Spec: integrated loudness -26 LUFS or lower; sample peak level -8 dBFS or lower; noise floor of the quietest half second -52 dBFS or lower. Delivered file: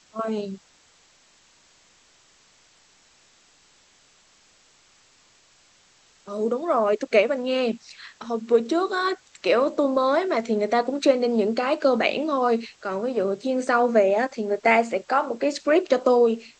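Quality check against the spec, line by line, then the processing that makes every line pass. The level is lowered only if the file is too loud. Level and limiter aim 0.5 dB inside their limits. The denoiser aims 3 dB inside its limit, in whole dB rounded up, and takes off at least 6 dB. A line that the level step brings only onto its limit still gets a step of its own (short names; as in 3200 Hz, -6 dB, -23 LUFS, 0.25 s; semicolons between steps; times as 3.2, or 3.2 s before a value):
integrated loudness -22.5 LUFS: fail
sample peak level -5.0 dBFS: fail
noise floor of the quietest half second -58 dBFS: OK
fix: gain -4 dB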